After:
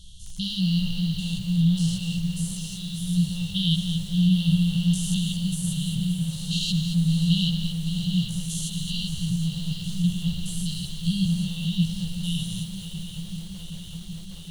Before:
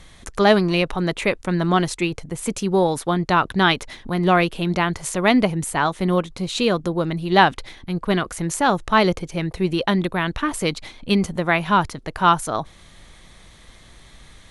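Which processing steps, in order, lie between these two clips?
spectrogram pixelated in time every 200 ms; 2.51–3.00 s: resonant low shelf 260 Hz -9.5 dB, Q 3; 6.61–7.29 s: waveshaping leveller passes 1; 9.34–10.03 s: hard clipper -29.5 dBFS, distortion -18 dB; chorus voices 6, 0.81 Hz, delay 14 ms, depth 3.4 ms; brick-wall FIR band-stop 190–2700 Hz; shuffle delay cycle 767 ms, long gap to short 3:1, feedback 72%, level -11.5 dB; bit-crushed delay 223 ms, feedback 35%, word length 8-bit, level -7.5 dB; trim +5 dB

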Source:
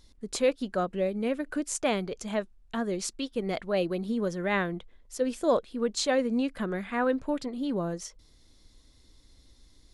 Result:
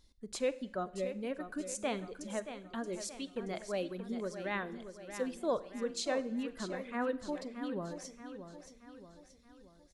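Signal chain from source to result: reverb removal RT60 1.4 s; feedback delay 627 ms, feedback 49%, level -10 dB; Schroeder reverb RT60 0.75 s, combs from 32 ms, DRR 16 dB; trim -8 dB

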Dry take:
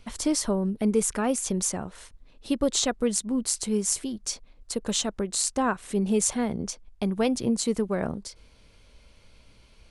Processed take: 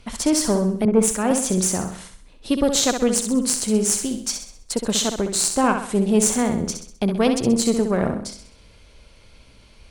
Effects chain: Chebyshev shaper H 4 -17 dB, 6 -28 dB, 8 -30 dB, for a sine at -5.5 dBFS; in parallel at -8 dB: saturation -18 dBFS, distortion -14 dB; on the sum: flutter echo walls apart 11.1 m, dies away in 0.55 s; 0.85–1.31 s: three bands expanded up and down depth 100%; trim +2.5 dB

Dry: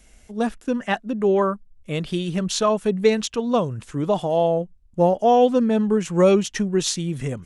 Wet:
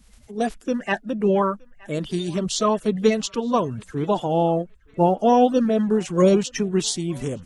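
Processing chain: coarse spectral quantiser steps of 30 dB; band-passed feedback delay 919 ms, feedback 51%, band-pass 1.6 kHz, level -22 dB

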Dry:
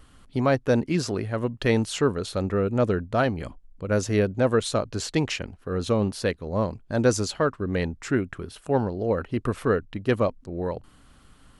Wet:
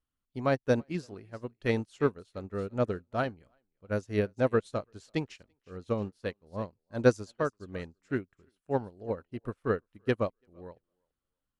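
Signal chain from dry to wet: thinning echo 337 ms, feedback 26%, high-pass 290 Hz, level -15.5 dB; upward expansion 2.5:1, over -39 dBFS

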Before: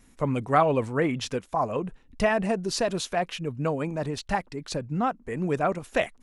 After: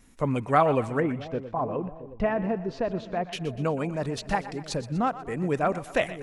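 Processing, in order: 1.00–3.33 s: tape spacing loss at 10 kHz 39 dB; two-band feedback delay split 590 Hz, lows 672 ms, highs 122 ms, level -14 dB

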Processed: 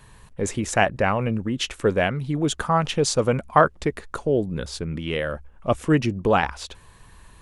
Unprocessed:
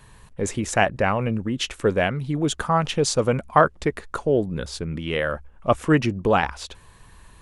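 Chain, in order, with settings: 3.74–6.19 s: dynamic bell 1.2 kHz, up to -5 dB, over -32 dBFS, Q 0.73

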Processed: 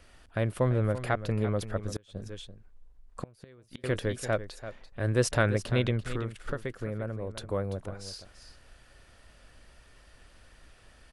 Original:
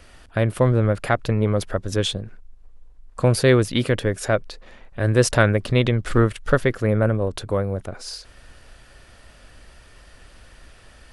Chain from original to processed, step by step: 6.00–7.37 s: compression 3:1, threshold -24 dBFS, peak gain reduction 10 dB; delay 339 ms -12.5 dB; 1.89–3.84 s: inverted gate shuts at -12 dBFS, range -31 dB; trim -8.5 dB

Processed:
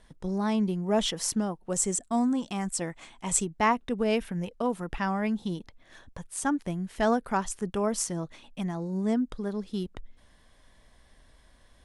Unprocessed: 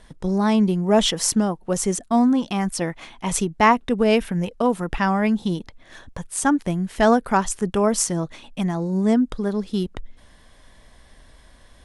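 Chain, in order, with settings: 1.70–3.46 s: peaking EQ 7.8 kHz +13.5 dB 0.33 oct; trim -8.5 dB

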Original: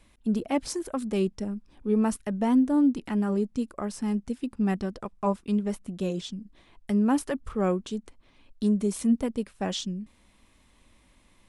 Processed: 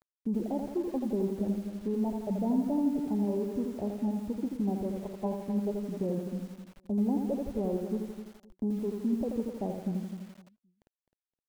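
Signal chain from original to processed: median filter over 41 samples; steep low-pass 960 Hz 72 dB/octave; reverb removal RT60 1.2 s; bass shelf 85 Hz -6 dB; compression, threshold -25 dBFS, peak gain reduction 6.5 dB; peak limiter -26 dBFS, peak gain reduction 6.5 dB; small samples zeroed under -55 dBFS; feedback delay 259 ms, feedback 22%, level -11.5 dB; bit-crushed delay 83 ms, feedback 55%, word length 9-bit, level -5 dB; trim +2 dB

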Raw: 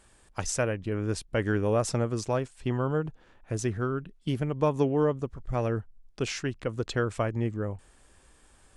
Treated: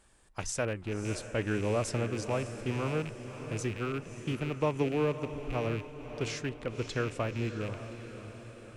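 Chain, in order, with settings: rattle on loud lows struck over -33 dBFS, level -27 dBFS; flange 1.8 Hz, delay 3.4 ms, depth 3.8 ms, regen -89%; echo that smears into a reverb 590 ms, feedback 54%, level -10.5 dB

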